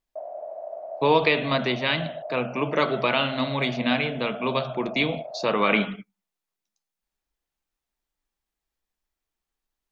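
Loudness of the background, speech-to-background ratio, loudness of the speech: −37.0 LKFS, 12.5 dB, −24.5 LKFS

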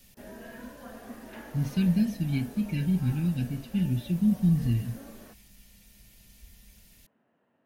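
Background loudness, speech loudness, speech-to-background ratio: −46.5 LKFS, −28.0 LKFS, 18.5 dB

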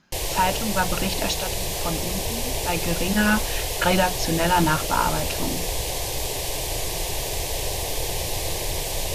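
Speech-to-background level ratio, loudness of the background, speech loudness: 1.5 dB, −26.5 LKFS, −25.0 LKFS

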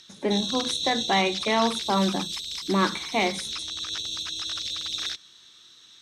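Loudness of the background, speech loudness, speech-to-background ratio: −29.5 LKFS, −26.0 LKFS, 3.5 dB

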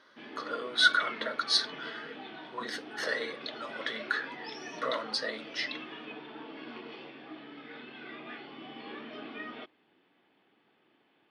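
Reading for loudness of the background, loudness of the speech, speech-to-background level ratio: −43.5 LKFS, −31.5 LKFS, 12.0 dB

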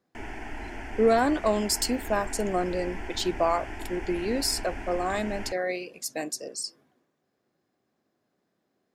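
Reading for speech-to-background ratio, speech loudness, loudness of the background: 11.0 dB, −28.0 LKFS, −39.0 LKFS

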